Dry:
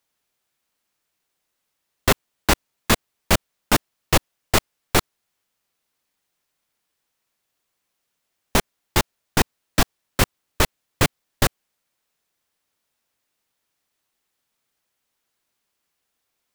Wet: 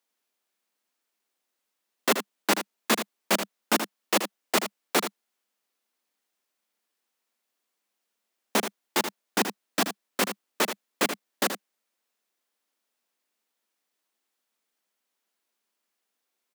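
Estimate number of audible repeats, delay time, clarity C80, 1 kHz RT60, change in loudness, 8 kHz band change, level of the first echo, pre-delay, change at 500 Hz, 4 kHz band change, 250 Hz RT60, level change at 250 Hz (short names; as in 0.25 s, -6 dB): 1, 79 ms, none, none, -5.0 dB, -4.5 dB, -9.0 dB, none, -3.5 dB, -4.5 dB, none, -5.0 dB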